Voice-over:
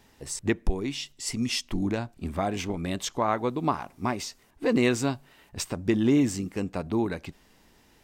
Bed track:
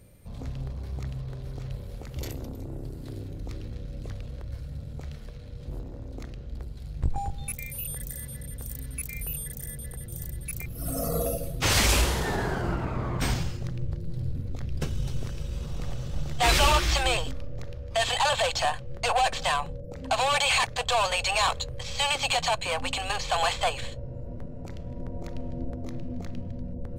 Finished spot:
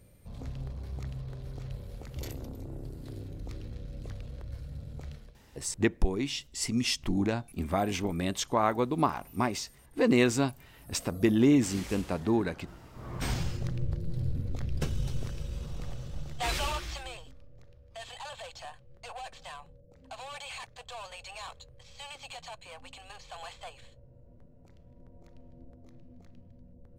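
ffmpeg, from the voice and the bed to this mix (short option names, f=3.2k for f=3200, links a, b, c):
-filter_complex "[0:a]adelay=5350,volume=-0.5dB[a];[1:a]volume=17dB,afade=t=out:st=5.1:d=0.29:silence=0.133352,afade=t=in:st=12.93:d=0.64:silence=0.0891251,afade=t=out:st=14.58:d=2.56:silence=0.125893[b];[a][b]amix=inputs=2:normalize=0"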